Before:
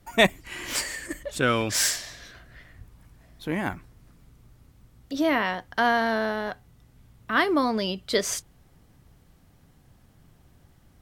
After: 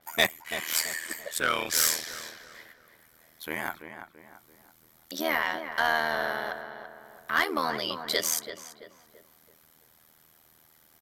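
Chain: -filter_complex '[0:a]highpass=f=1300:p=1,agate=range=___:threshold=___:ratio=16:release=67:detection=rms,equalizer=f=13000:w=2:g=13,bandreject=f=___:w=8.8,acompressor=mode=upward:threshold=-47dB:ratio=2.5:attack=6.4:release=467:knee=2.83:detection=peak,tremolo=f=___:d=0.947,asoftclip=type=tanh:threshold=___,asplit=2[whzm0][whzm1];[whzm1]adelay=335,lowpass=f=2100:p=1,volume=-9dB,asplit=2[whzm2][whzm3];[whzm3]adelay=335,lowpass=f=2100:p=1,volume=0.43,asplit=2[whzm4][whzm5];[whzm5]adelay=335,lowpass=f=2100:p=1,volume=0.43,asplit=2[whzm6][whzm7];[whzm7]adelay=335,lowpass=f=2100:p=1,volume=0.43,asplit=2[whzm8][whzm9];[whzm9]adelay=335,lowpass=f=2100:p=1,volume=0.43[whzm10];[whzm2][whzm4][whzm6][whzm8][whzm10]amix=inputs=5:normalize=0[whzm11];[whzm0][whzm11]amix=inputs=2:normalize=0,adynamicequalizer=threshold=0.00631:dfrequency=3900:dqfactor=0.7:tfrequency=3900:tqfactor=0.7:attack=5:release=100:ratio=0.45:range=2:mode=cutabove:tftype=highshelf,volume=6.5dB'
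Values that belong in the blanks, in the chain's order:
-13dB, -57dB, 2700, 80, -19.5dB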